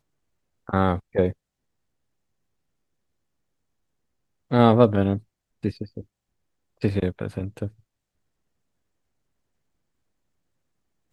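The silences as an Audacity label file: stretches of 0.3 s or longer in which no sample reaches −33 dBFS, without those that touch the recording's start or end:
1.310000	4.510000	silence
5.180000	5.640000	silence
6.010000	6.820000	silence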